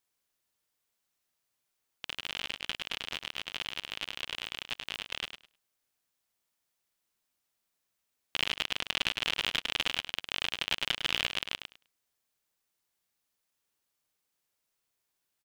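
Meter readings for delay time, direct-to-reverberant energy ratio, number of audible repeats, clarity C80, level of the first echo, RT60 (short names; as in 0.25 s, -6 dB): 0.103 s, none, 2, none, -8.0 dB, none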